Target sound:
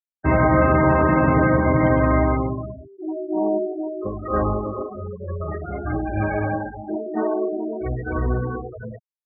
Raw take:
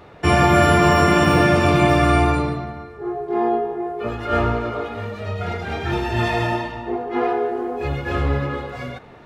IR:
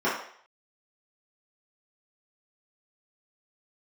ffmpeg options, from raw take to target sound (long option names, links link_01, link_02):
-af "asetrate=39289,aresample=44100,atempo=1.12246,lowpass=2000,afftfilt=real='re*gte(hypot(re,im),0.0891)':imag='im*gte(hypot(re,im),0.0891)':win_size=1024:overlap=0.75,volume=-1.5dB"